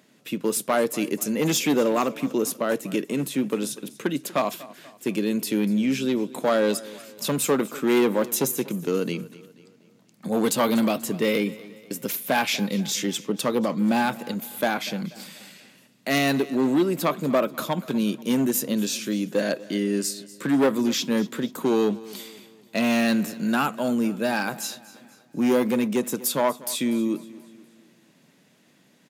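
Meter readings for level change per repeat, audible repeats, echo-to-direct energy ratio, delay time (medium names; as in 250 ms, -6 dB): -6.5 dB, 3, -18.0 dB, 242 ms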